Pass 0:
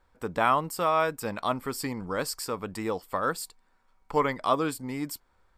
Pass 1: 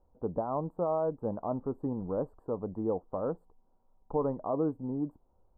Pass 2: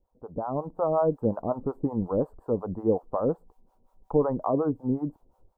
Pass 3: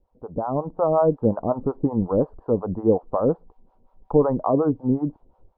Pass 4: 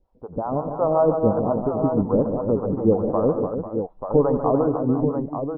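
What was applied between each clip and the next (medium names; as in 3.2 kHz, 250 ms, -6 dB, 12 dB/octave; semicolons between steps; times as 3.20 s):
peak limiter -17 dBFS, peak gain reduction 7.5 dB; inverse Chebyshev low-pass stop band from 2.1 kHz, stop band 50 dB
level rider gain up to 11.5 dB; harmonic tremolo 5.5 Hz, depth 100%, crossover 550 Hz
distance through air 290 m; trim +6 dB
multi-tap echo 91/147/206/294/493/887 ms -14/-8.5/-18.5/-8/-13/-7 dB; MP3 24 kbps 16 kHz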